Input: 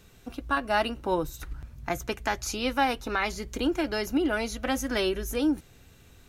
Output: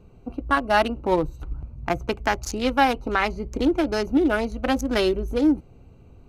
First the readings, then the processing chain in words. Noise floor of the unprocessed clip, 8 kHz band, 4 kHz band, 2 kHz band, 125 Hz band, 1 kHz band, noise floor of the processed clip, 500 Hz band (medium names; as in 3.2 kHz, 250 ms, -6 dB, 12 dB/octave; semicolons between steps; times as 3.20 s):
-55 dBFS, -1.5 dB, +2.0 dB, +4.0 dB, +6.5 dB, +6.0 dB, -50 dBFS, +6.0 dB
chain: local Wiener filter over 25 samples; trim +6.5 dB